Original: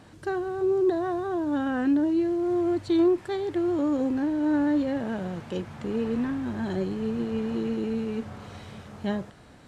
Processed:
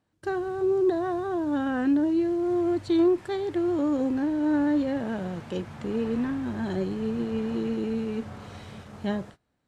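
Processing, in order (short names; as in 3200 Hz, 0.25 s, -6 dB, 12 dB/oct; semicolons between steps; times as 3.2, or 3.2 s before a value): gate -44 dBFS, range -25 dB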